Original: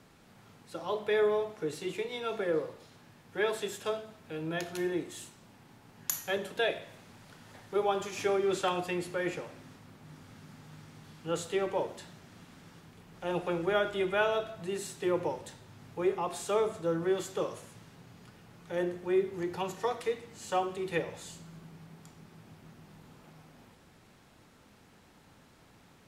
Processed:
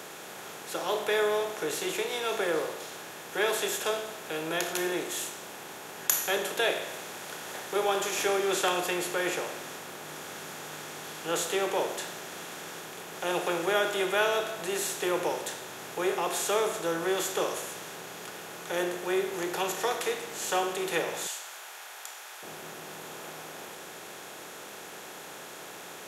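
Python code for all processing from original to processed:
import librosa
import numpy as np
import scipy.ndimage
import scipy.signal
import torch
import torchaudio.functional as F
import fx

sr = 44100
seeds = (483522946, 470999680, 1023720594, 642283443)

y = fx.chain(x, sr, fx.highpass(hz=840.0, slope=24),
    fx.peak_eq(hz=1100.0, db=-6.0, octaves=0.22), at=(21.27, 22.43))
y = fx.bin_compress(y, sr, power=0.6)
y = fx.highpass(y, sr, hz=350.0, slope=6)
y = fx.high_shelf(y, sr, hz=3800.0, db=7.0)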